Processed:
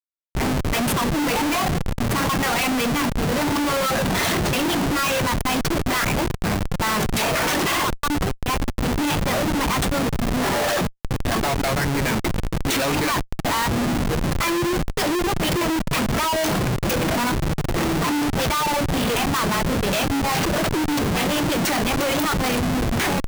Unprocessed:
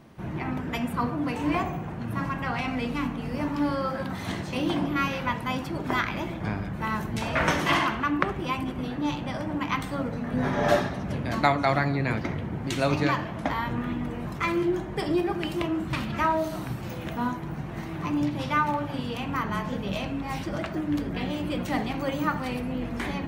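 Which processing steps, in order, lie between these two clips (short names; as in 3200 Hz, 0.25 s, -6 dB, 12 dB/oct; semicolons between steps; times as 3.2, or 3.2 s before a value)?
HPF 290 Hz 6 dB/oct; reverb removal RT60 1.7 s; high shelf 4200 Hz +11.5 dB; added harmonics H 8 -37 dB, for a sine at -3 dBFS; AGC gain up to 13 dB; Schmitt trigger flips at -26 dBFS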